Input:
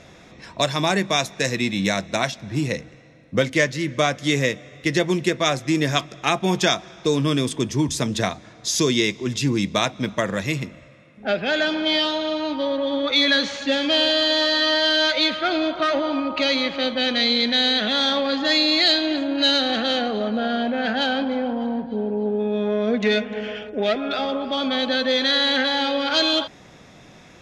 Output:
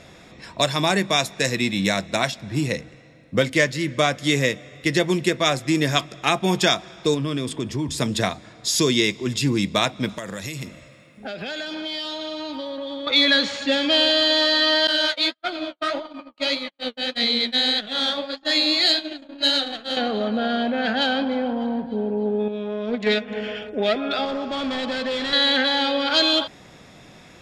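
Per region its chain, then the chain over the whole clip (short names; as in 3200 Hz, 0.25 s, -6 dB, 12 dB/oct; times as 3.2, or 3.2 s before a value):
7.14–7.98 high shelf 5600 Hz -9 dB + compressor 4:1, threshold -21 dBFS
10.09–13.07 tone controls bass 0 dB, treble +8 dB + compressor 12:1, threshold -27 dBFS
14.87–19.97 gate -22 dBFS, range -52 dB + bell 11000 Hz +8 dB 1.1 oct + flange 1.7 Hz, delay 3.8 ms, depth 9.8 ms, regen +23%
22.48–23.28 gate -20 dBFS, range -6 dB + Doppler distortion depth 0.14 ms
24.25–25.33 CVSD 32 kbps + overloaded stage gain 22 dB + air absorption 110 m
whole clip: high shelf 5500 Hz +5.5 dB; notch 6100 Hz, Q 7.2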